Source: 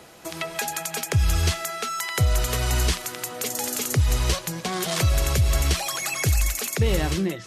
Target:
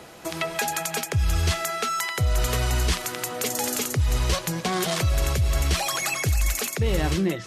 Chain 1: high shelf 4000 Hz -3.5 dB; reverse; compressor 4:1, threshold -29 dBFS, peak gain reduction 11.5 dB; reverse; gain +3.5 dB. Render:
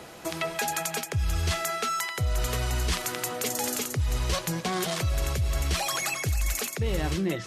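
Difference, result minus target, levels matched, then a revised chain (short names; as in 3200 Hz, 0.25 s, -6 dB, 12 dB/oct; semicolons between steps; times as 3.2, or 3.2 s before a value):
compressor: peak gain reduction +4.5 dB
high shelf 4000 Hz -3.5 dB; reverse; compressor 4:1, threshold -23 dBFS, peak gain reduction 7 dB; reverse; gain +3.5 dB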